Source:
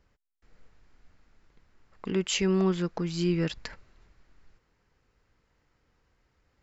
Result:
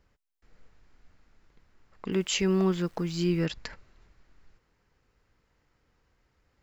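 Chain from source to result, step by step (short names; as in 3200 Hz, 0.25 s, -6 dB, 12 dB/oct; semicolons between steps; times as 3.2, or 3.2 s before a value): 2.12–3.46 requantised 10-bit, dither none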